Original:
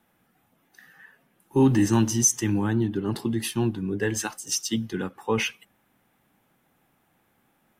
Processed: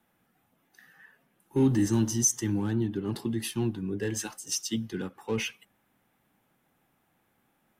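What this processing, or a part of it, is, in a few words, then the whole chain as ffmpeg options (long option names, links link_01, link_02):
one-band saturation: -filter_complex "[0:a]asettb=1/sr,asplit=3[link_01][link_02][link_03];[link_01]atrim=end=1.664[link_04];[link_02]atrim=start=1.66:end=2.68,asetpts=PTS-STARTPTS,afade=type=in:duration=0.004:curve=qsin,afade=type=out:start_time=1.016:duration=0.004:curve=qsin,equalizer=frequency=2500:width_type=o:width=0.23:gain=-9.5[link_05];[link_03]atrim=start=2.676[link_06];[link_04][link_05]acrossfade=duration=0.004:curve1=hsin:curve2=qsin[link_07];[link_07][link_06]acrossfade=duration=0.004:curve1=qsin:curve2=hsin,acrossover=split=580|2300[link_08][link_09][link_10];[link_09]asoftclip=type=tanh:threshold=-38dB[link_11];[link_08][link_11][link_10]amix=inputs=3:normalize=0,volume=-4dB"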